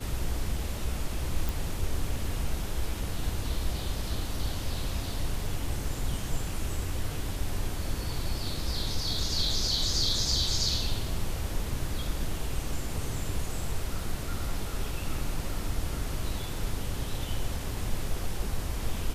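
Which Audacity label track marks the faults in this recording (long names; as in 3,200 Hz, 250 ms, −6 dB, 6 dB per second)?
1.490000	1.490000	click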